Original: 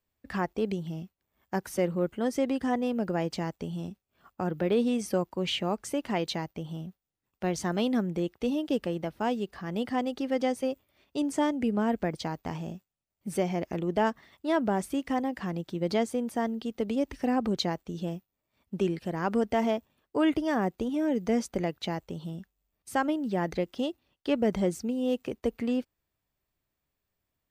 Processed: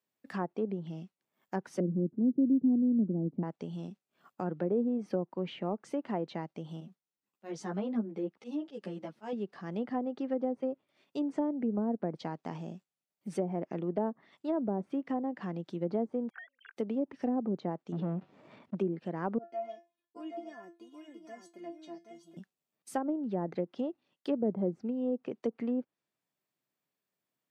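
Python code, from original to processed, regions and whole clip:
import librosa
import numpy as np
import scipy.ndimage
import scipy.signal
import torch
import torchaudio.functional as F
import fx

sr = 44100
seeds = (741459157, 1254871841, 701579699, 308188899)

y = fx.chain(x, sr, fx.lowpass_res(hz=270.0, q=2.2),
    fx.peak_eq(hz=120.0, db=3.0, octaves=1.4), at=(1.8, 3.43))
y = fx.chain(y, sr, fx.auto_swell(attack_ms=115.0),
    fx.ensemble(), at=(6.8, 9.33))
y = fx.chain(y, sr, fx.sine_speech(),
    fx.ladder_highpass(hz=1500.0, resonance_pct=85), at=(16.3, 16.77))
y = fx.chain(y, sr, fx.leveller(passes=3),
    fx.spacing_loss(db_at_10k=31),
    fx.sustainer(db_per_s=52.0), at=(17.92, 18.75))
y = fx.chain(y, sr, fx.stiff_resonator(f0_hz=340.0, decay_s=0.24, stiffness=0.002),
    fx.echo_single(ms=776, db=-6.5), at=(19.38, 22.37))
y = scipy.signal.sosfilt(scipy.signal.butter(4, 150.0, 'highpass', fs=sr, output='sos'), y)
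y = fx.env_lowpass_down(y, sr, base_hz=650.0, full_db=-23.0)
y = fx.dynamic_eq(y, sr, hz=2600.0, q=0.74, threshold_db=-51.0, ratio=4.0, max_db=-4)
y = y * librosa.db_to_amplitude(-3.5)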